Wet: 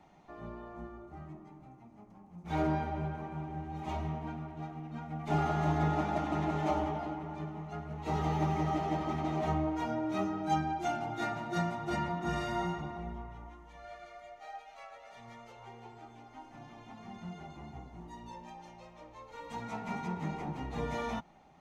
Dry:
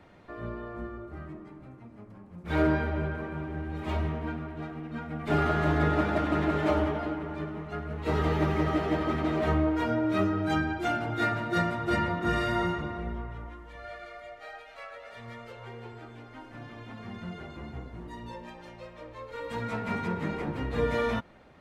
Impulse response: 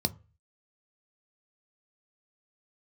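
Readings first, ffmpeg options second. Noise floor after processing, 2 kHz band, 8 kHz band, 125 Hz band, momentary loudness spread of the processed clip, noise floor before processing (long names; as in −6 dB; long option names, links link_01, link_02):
−56 dBFS, −10.0 dB, can't be measured, −4.5 dB, 19 LU, −50 dBFS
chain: -af "equalizer=frequency=100:width_type=o:width=0.33:gain=-12,equalizer=frequency=160:width_type=o:width=0.33:gain=7,equalizer=frequency=500:width_type=o:width=0.33:gain=-7,equalizer=frequency=800:width_type=o:width=0.33:gain=12,equalizer=frequency=1600:width_type=o:width=0.33:gain=-7,equalizer=frequency=6300:width_type=o:width=0.33:gain=10,volume=-7dB"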